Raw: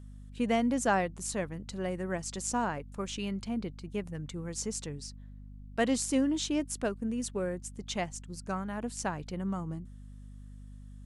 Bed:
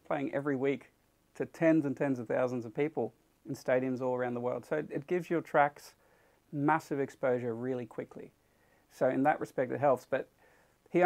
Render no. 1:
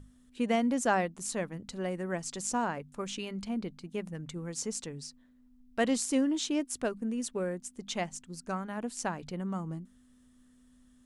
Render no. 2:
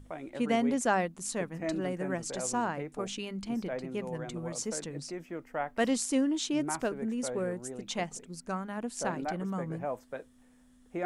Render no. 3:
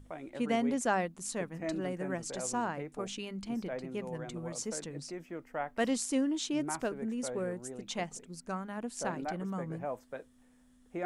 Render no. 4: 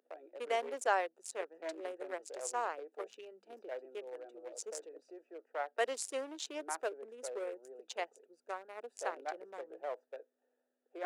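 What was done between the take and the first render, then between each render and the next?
mains-hum notches 50/100/150/200 Hz
mix in bed −8 dB
level −2.5 dB
adaptive Wiener filter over 41 samples; Butterworth high-pass 410 Hz 36 dB per octave

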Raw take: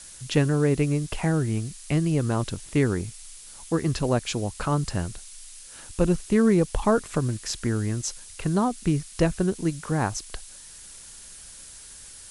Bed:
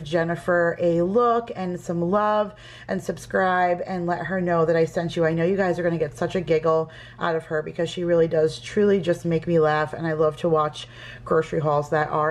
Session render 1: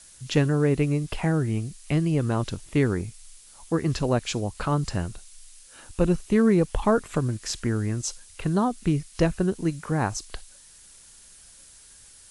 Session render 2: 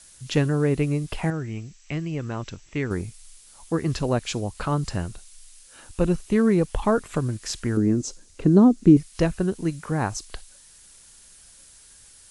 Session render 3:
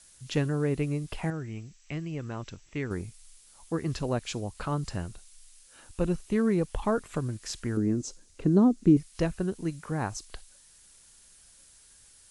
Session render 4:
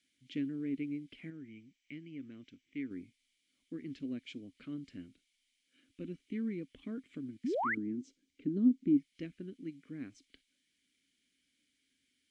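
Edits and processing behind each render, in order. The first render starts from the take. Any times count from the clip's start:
noise reduction from a noise print 6 dB
0:01.30–0:02.91: Chebyshev low-pass with heavy ripple 7,900 Hz, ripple 6 dB; 0:07.77–0:08.97: drawn EQ curve 110 Hz 0 dB, 290 Hz +14 dB, 830 Hz −3 dB, 3,200 Hz −7 dB, 4,700 Hz −4 dB, 6,800 Hz −2 dB, 11,000 Hz −12 dB
level −6 dB
formant filter i; 0:07.44–0:07.75: sound drawn into the spectrogram rise 210–2,300 Hz −33 dBFS

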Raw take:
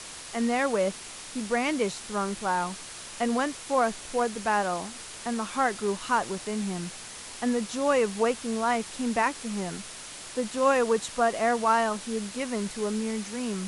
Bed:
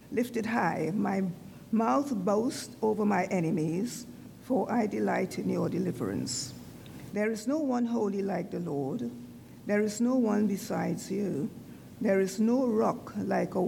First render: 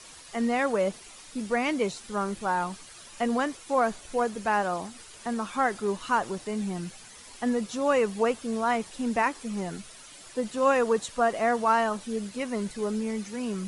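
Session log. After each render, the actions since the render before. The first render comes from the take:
broadband denoise 10 dB, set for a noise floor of −42 dBFS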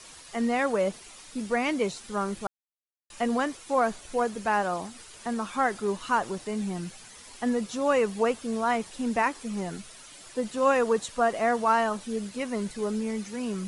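0:02.47–0:03.10: silence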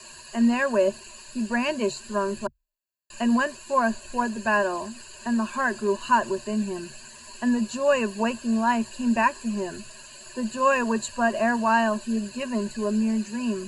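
EQ curve with evenly spaced ripples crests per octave 1.4, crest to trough 17 dB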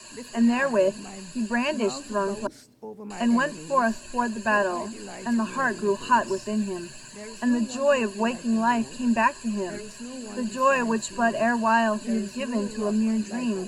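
mix in bed −11.5 dB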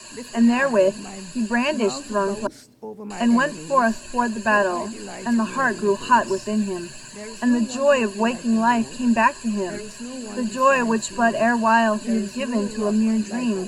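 level +4 dB

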